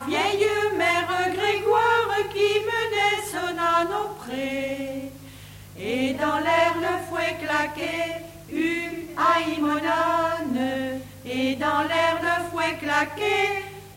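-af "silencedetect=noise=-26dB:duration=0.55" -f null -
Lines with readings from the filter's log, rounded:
silence_start: 5.06
silence_end: 5.82 | silence_duration: 0.76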